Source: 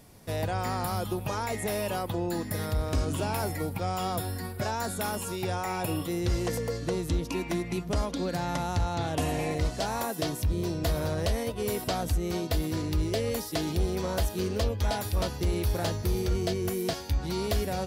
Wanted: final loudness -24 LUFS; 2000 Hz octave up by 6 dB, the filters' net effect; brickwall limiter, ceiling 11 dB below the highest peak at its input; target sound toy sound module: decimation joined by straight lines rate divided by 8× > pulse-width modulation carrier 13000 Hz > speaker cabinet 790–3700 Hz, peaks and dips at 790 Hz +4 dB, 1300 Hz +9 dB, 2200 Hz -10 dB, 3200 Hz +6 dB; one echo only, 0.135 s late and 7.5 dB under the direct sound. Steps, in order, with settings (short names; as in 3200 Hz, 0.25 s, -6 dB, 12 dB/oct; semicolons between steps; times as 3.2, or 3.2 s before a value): bell 2000 Hz +8.5 dB; limiter -27 dBFS; echo 0.135 s -7.5 dB; decimation joined by straight lines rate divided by 8×; pulse-width modulation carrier 13000 Hz; speaker cabinet 790–3700 Hz, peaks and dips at 790 Hz +4 dB, 1300 Hz +9 dB, 2200 Hz -10 dB, 3200 Hz +6 dB; gain +16 dB